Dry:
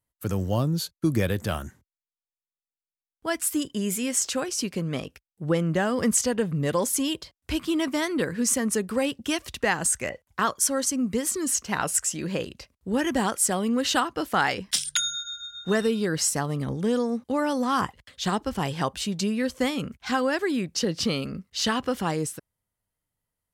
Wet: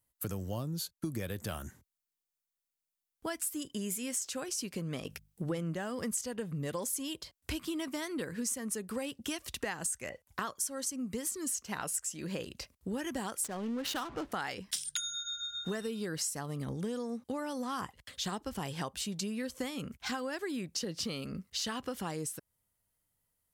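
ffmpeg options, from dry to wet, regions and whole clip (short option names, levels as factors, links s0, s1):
-filter_complex "[0:a]asettb=1/sr,asplit=3[s0][s1][s2];[s0]atrim=end=5.054[s3];[s1]atrim=start=5.05:end=5.75,asetpts=PTS-STARTPTS,afade=t=in:d=0.004:c=qsin,afade=t=out:st=0.696:d=0.004:c=qsin,bandreject=f=50:t=h:w=6,bandreject=f=100:t=h:w=6,bandreject=f=150:t=h:w=6,bandreject=f=200:t=h:w=6,acontrast=59[s4];[s2]atrim=start=5.746[s5];[s3][s4]acrossfade=d=0.004:c1=hsin:c2=qsin[s6];[s6][s5]acrossfade=d=0.004:c1=qsin:c2=hsin,asettb=1/sr,asplit=3[s7][s8][s9];[s7]atrim=end=13.444[s10];[s8]atrim=start=13.44:end=14.32,asetpts=PTS-STARTPTS,afade=t=in:d=0.004:c=qsin,afade=t=out:st=0.876:d=0.004:c=qsin,aeval=exprs='val(0)+0.5*0.0251*sgn(val(0))':c=same,adynamicsmooth=sensitivity=4:basefreq=700[s11];[s9]atrim=start=14.316[s12];[s10][s11]acrossfade=d=0.004:c1=hsin:c2=qsin[s13];[s13][s12]acrossfade=d=0.004:c1=qsin:c2=hsin,highshelf=f=6600:g=8.5,acompressor=threshold=0.0158:ratio=4"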